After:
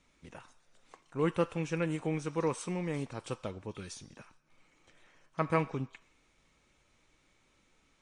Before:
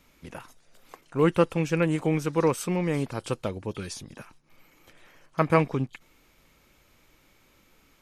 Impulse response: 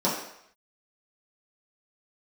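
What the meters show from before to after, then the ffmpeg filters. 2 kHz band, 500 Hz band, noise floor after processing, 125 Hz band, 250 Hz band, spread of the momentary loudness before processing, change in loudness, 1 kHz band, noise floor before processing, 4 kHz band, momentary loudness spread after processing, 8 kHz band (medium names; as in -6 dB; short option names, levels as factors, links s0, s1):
-7.5 dB, -8.5 dB, -71 dBFS, -8.5 dB, -8.5 dB, 19 LU, -8.5 dB, -7.5 dB, -62 dBFS, -8.0 dB, 19 LU, -7.5 dB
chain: -filter_complex "[0:a]asplit=2[s0][s1];[s1]highpass=1400[s2];[1:a]atrim=start_sample=2205[s3];[s2][s3]afir=irnorm=-1:irlink=0,volume=0.1[s4];[s0][s4]amix=inputs=2:normalize=0,volume=0.398" -ar 22050 -c:a libmp3lame -b:a 48k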